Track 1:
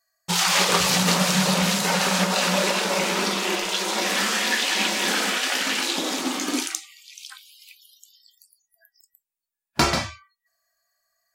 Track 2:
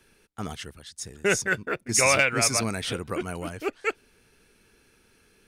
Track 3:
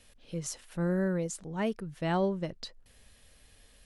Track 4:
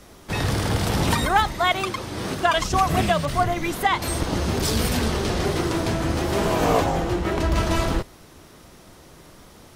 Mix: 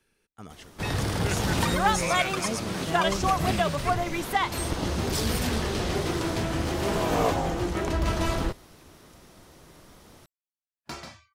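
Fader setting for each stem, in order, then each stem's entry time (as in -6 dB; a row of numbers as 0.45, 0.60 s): -19.0, -10.5, -2.0, -4.5 dB; 1.10, 0.00, 0.85, 0.50 s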